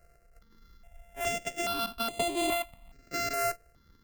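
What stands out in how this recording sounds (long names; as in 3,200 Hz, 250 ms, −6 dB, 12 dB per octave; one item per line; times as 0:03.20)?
a buzz of ramps at a fixed pitch in blocks of 64 samples
notches that jump at a steady rate 2.4 Hz 930–5,500 Hz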